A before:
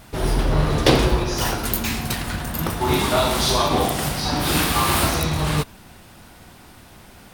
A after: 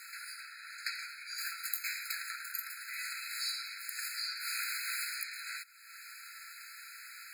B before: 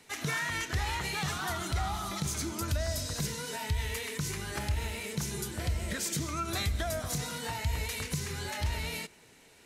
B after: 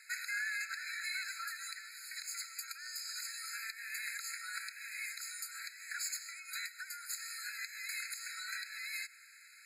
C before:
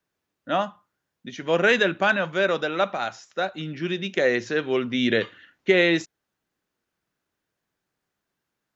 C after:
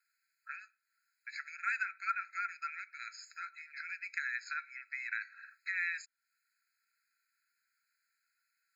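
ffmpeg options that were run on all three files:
-af "afreqshift=-160,acompressor=threshold=-40dB:ratio=2.5,afftfilt=real='re*eq(mod(floor(b*sr/1024/1300),2),1)':imag='im*eq(mod(floor(b*sr/1024/1300),2),1)':win_size=1024:overlap=0.75,volume=4.5dB"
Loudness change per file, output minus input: −18.0, −7.0, −15.5 LU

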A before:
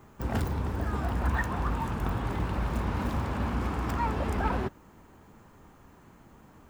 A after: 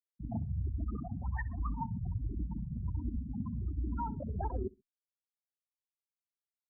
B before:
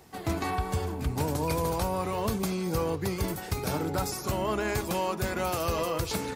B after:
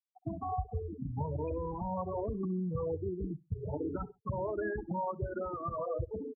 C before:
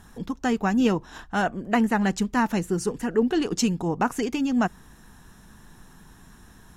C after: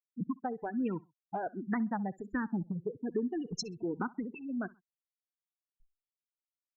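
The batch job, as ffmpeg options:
-filter_complex "[0:a]afftfilt=real='re*gte(hypot(re,im),0.112)':imag='im*gte(hypot(re,im),0.112)':win_size=1024:overlap=0.75,acompressor=threshold=-28dB:ratio=8,aecho=1:1:65|130:0.0708|0.0191,asplit=2[link_01][link_02];[link_02]afreqshift=-1.3[link_03];[link_01][link_03]amix=inputs=2:normalize=1"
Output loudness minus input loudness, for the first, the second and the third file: −7.5, −7.0, −11.5 LU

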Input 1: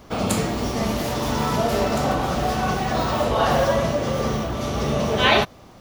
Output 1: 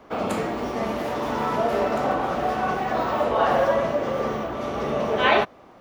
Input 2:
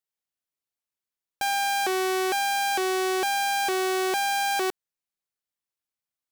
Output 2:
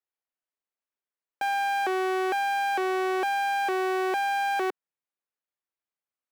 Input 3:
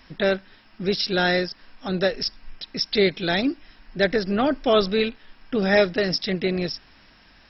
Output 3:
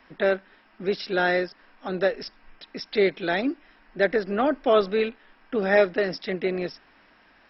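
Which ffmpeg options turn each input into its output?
-filter_complex "[0:a]acrossover=split=240 2600:gain=0.224 1 0.2[link_01][link_02][link_03];[link_01][link_02][link_03]amix=inputs=3:normalize=0"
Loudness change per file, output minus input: −2.0, −2.0, −2.0 LU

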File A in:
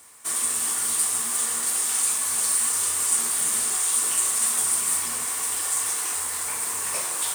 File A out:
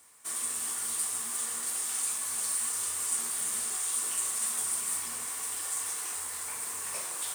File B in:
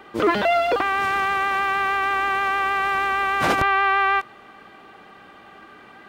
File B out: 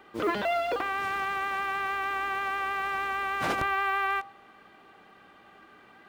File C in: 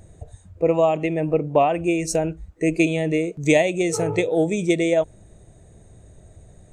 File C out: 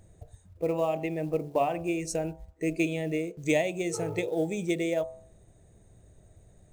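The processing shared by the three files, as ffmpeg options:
-af "acrusher=bits=8:mode=log:mix=0:aa=0.000001,bandreject=frequency=72.15:width_type=h:width=4,bandreject=frequency=144.3:width_type=h:width=4,bandreject=frequency=216.45:width_type=h:width=4,bandreject=frequency=288.6:width_type=h:width=4,bandreject=frequency=360.75:width_type=h:width=4,bandreject=frequency=432.9:width_type=h:width=4,bandreject=frequency=505.05:width_type=h:width=4,bandreject=frequency=577.2:width_type=h:width=4,bandreject=frequency=649.35:width_type=h:width=4,bandreject=frequency=721.5:width_type=h:width=4,bandreject=frequency=793.65:width_type=h:width=4,bandreject=frequency=865.8:width_type=h:width=4,bandreject=frequency=937.95:width_type=h:width=4,bandreject=frequency=1010.1:width_type=h:width=4,bandreject=frequency=1082.25:width_type=h:width=4,bandreject=frequency=1154.4:width_type=h:width=4,bandreject=frequency=1226.55:width_type=h:width=4,volume=-8.5dB"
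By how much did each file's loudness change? −8.5, −8.5, −9.0 LU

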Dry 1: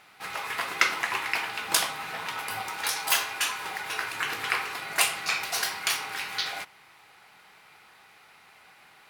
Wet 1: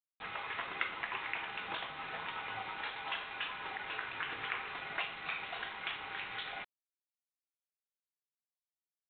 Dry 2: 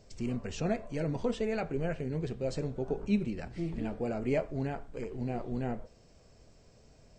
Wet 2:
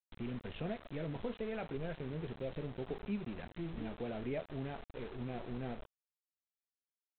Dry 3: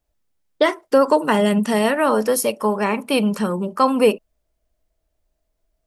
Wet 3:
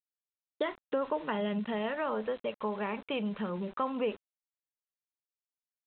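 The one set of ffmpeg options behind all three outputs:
-af "adynamicequalizer=threshold=0.0126:dfrequency=280:dqfactor=4.2:tfrequency=280:tqfactor=4.2:attack=5:release=100:ratio=0.375:range=3:mode=cutabove:tftype=bell,acompressor=threshold=-33dB:ratio=2,aresample=8000,aeval=exprs='val(0)*gte(abs(val(0)),0.00841)':channel_layout=same,aresample=44100,volume=-5dB"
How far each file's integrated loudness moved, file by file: −11.5, −8.0, −15.5 LU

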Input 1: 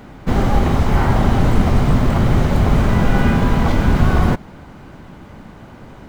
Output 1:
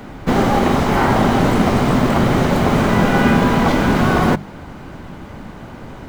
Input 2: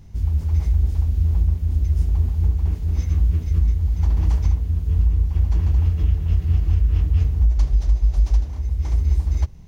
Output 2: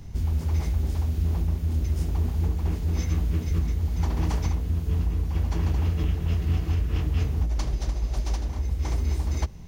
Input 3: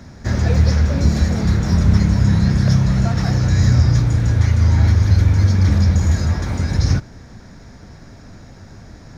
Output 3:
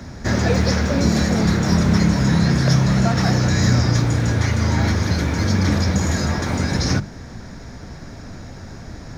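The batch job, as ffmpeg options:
-filter_complex "[0:a]bandreject=frequency=50:width_type=h:width=6,bandreject=frequency=100:width_type=h:width=6,bandreject=frequency=150:width_type=h:width=6,bandreject=frequency=200:width_type=h:width=6,acrossover=split=150[link_01][link_02];[link_01]acompressor=threshold=-31dB:ratio=4[link_03];[link_03][link_02]amix=inputs=2:normalize=0,volume=5dB"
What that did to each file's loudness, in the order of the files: +1.5, −6.0, −2.5 LU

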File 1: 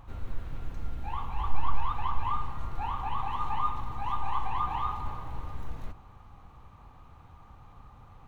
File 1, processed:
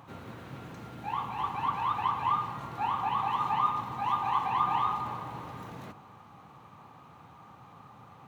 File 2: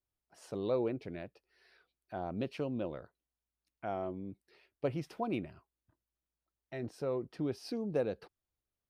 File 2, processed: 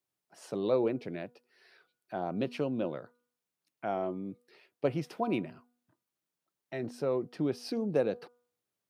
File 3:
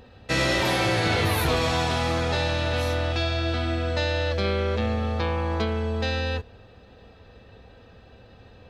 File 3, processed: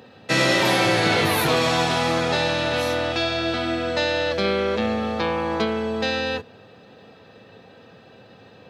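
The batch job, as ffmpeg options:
-af "highpass=frequency=130:width=0.5412,highpass=frequency=130:width=1.3066,bandreject=frequency=243.1:width_type=h:width=4,bandreject=frequency=486.2:width_type=h:width=4,bandreject=frequency=729.3:width_type=h:width=4,bandreject=frequency=972.4:width_type=h:width=4,bandreject=frequency=1215.5:width_type=h:width=4,bandreject=frequency=1458.6:width_type=h:width=4,volume=4.5dB"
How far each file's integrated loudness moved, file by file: +4.0, +4.0, +3.5 LU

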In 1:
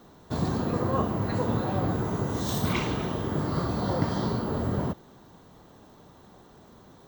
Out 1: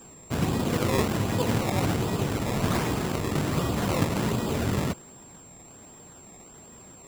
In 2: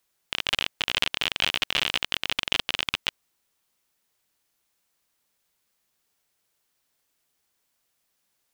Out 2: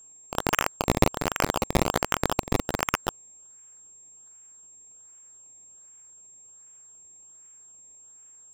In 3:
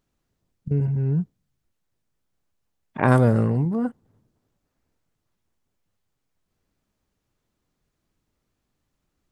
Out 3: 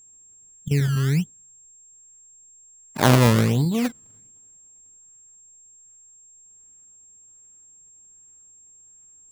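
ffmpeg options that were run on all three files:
-af "acrusher=samples=20:mix=1:aa=0.000001:lfo=1:lforange=20:lforate=1.3,aeval=exprs='val(0)+0.00316*sin(2*PI*7500*n/s)':channel_layout=same,volume=1.5dB"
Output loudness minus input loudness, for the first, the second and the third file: +1.5, −1.0, +1.5 LU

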